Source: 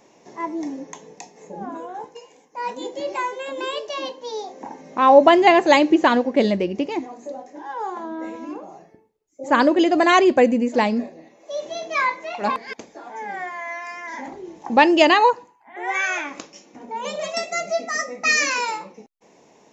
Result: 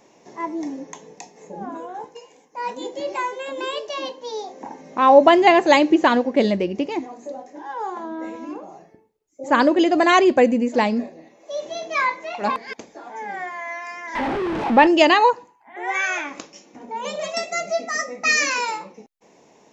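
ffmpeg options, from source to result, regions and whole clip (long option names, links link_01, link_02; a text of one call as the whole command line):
ffmpeg -i in.wav -filter_complex "[0:a]asettb=1/sr,asplit=3[link_01][link_02][link_03];[link_01]atrim=end=14.154[link_04];[link_02]atrim=start=14.15:end=14.87,asetpts=PTS-STARTPTS,afade=type=in:duration=0.004:curve=qsin,afade=type=out:start_time=0.716:duration=0.004:curve=qsin,aeval=exprs='val(0)+0.5*0.112*sgn(val(0))':channel_layout=same,lowpass=2400[link_05];[link_03]atrim=start=14.866[link_06];[link_04][link_05]acrossfade=duration=0.004:curve1=hsin:curve2=qsin[link_07];[link_07][link_06]acrossfade=duration=0.004:curve1=qsin:curve2=hsin" out.wav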